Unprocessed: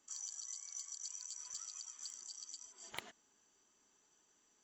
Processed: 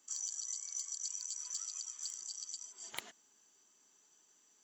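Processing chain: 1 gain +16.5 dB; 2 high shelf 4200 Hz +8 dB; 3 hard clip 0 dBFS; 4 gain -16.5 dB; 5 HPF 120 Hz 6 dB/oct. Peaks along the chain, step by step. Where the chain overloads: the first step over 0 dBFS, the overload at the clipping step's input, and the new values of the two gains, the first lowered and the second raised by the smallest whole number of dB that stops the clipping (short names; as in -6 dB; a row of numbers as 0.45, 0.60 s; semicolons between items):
-8.5, -4.0, -4.0, -20.5, -20.0 dBFS; no overload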